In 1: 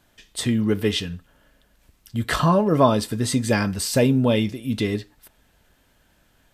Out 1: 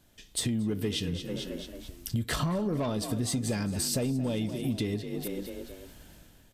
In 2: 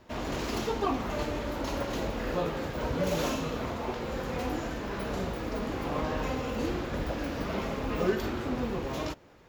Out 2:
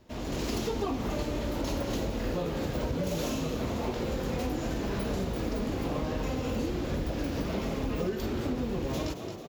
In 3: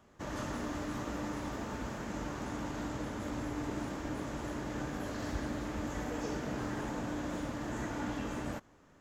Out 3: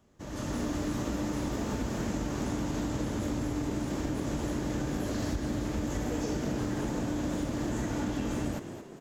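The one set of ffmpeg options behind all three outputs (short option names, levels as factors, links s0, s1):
-filter_complex "[0:a]asoftclip=type=tanh:threshold=0.211,equalizer=f=1300:w=0.54:g=-8,dynaudnorm=f=150:g=7:m=3.98,asplit=5[s0][s1][s2][s3][s4];[s1]adelay=221,afreqshift=43,volume=0.188[s5];[s2]adelay=442,afreqshift=86,volume=0.0902[s6];[s3]adelay=663,afreqshift=129,volume=0.0432[s7];[s4]adelay=884,afreqshift=172,volume=0.0209[s8];[s0][s5][s6][s7][s8]amix=inputs=5:normalize=0,acompressor=threshold=0.0398:ratio=8"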